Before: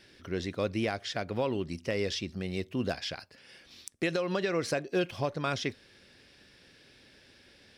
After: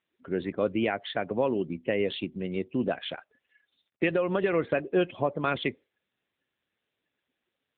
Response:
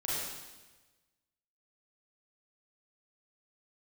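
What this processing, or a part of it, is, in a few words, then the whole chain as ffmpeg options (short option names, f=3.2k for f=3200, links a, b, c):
mobile call with aggressive noise cancelling: -af "highpass=170,afftdn=nr=28:nf=-44,volume=5dB" -ar 8000 -c:a libopencore_amrnb -b:a 7950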